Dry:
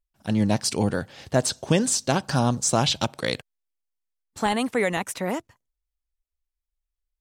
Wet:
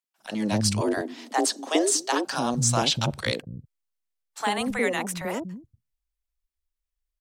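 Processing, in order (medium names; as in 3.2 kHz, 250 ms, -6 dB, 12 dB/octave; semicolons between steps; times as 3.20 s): 0.77–2.21 s: frequency shift +150 Hz; three bands offset in time highs, mids, lows 40/240 ms, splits 200/640 Hz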